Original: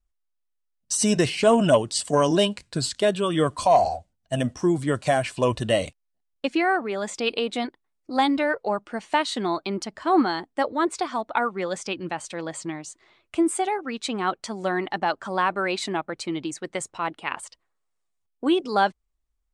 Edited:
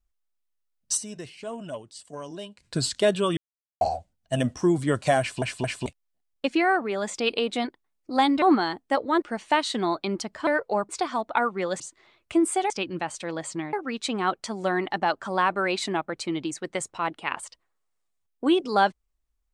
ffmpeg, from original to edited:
-filter_complex "[0:a]asplit=15[a][b][c][d][e][f][g][h][i][j][k][l][m][n][o];[a]atrim=end=1.15,asetpts=PTS-STARTPTS,afade=t=out:st=0.97:d=0.18:c=exp:silence=0.125893[p];[b]atrim=start=1.15:end=2.47,asetpts=PTS-STARTPTS,volume=-18dB[q];[c]atrim=start=2.47:end=3.37,asetpts=PTS-STARTPTS,afade=t=in:d=0.18:c=exp:silence=0.125893,afade=t=out:st=0.896:d=0.004:c=hsin[r];[d]atrim=start=3.37:end=3.81,asetpts=PTS-STARTPTS,volume=0[s];[e]atrim=start=3.81:end=5.422,asetpts=PTS-STARTPTS,afade=t=in:d=0.004:c=hsin[t];[f]atrim=start=5.198:end=5.422[u];[g]atrim=start=5.198:end=5.422[v];[h]atrim=start=5.858:end=8.422[w];[i]atrim=start=10.088:end=10.892[x];[j]atrim=start=8.838:end=10.092[y];[k]atrim=start=8.418:end=8.842[z];[l]atrim=start=10.888:end=11.802[aa];[m]atrim=start=12.828:end=13.732[ab];[n]atrim=start=11.798:end=12.832[ac];[o]atrim=start=13.728[ad];[p][q][r][s][t]concat=n=5:v=0:a=1[ae];[ae][u]acrossfade=d=0.004:c1=hsin:c2=hsin[af];[af][v]acrossfade=d=0.004:c1=hsin:c2=hsin[ag];[ag][w]acrossfade=d=0.004:c1=hsin:c2=hsin[ah];[ah][x]acrossfade=d=0.004:c1=hsin:c2=hsin[ai];[ai][y]acrossfade=d=0.004:c1=hsin:c2=hsin[aj];[aj][z]acrossfade=d=0.004:c1=hsin:c2=hsin[ak];[ak][aa]acrossfade=d=0.004:c1=hsin:c2=hsin[al];[al][ab]acrossfade=d=0.004:c1=hsin:c2=hsin[am];[am][ac]acrossfade=d=0.004:c1=hsin:c2=hsin[an];[an][ad]acrossfade=d=0.004:c1=hsin:c2=hsin"

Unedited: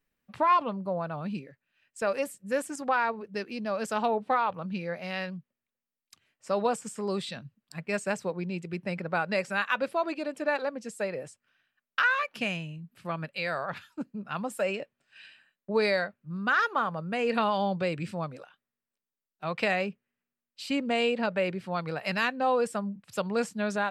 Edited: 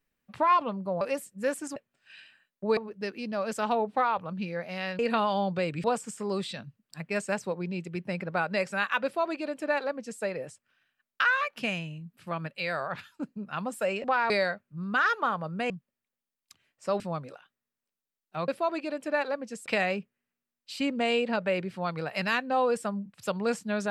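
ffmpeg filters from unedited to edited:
-filter_complex "[0:a]asplit=12[a][b][c][d][e][f][g][h][i][j][k][l];[a]atrim=end=1.012[m];[b]atrim=start=2.088:end=2.842[n];[c]atrim=start=14.818:end=15.832[o];[d]atrim=start=3.098:end=5.322[p];[e]atrim=start=17.228:end=18.082[q];[f]atrim=start=6.618:end=14.822[r];[g]atrim=start=2.838:end=3.102[s];[h]atrim=start=15.828:end=17.232[t];[i]atrim=start=5.318:end=6.622[u];[j]atrim=start=18.078:end=19.562[v];[k]atrim=start=9.818:end=11.002[w];[l]atrim=start=19.558[x];[m][n]acrossfade=d=0.004:c1=hsin:c2=hsin[y];[y][o]acrossfade=d=0.004:c1=hsin:c2=hsin[z];[z][p]acrossfade=d=0.004:c1=hsin:c2=hsin[aa];[aa][q]acrossfade=d=0.004:c1=hsin:c2=hsin[ab];[ab][r]acrossfade=d=0.004:c1=hsin:c2=hsin[ac];[ac][s]acrossfade=d=0.004:c1=hsin:c2=hsin[ad];[ad][t]acrossfade=d=0.004:c1=hsin:c2=hsin[ae];[ae][u]acrossfade=d=0.004:c1=hsin:c2=hsin[af];[af][v]acrossfade=d=0.004:c1=hsin:c2=hsin[ag];[ag][w]acrossfade=d=0.004:c1=hsin:c2=hsin[ah];[ah][x]acrossfade=d=0.004:c1=hsin:c2=hsin"

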